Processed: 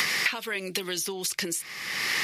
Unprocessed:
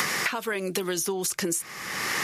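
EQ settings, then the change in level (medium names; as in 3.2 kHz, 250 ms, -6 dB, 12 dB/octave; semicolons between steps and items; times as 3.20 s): high-order bell 3.1 kHz +8.5 dB; treble shelf 6.5 kHz +4 dB; -5.5 dB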